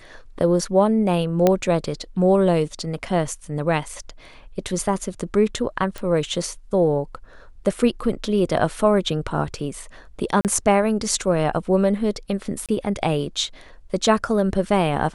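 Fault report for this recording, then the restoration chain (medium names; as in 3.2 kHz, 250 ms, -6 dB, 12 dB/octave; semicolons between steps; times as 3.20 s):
1.47 s: pop -4 dBFS
5.98 s: pop
10.41–10.45 s: dropout 38 ms
12.66–12.69 s: dropout 27 ms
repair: de-click; interpolate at 10.41 s, 38 ms; interpolate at 12.66 s, 27 ms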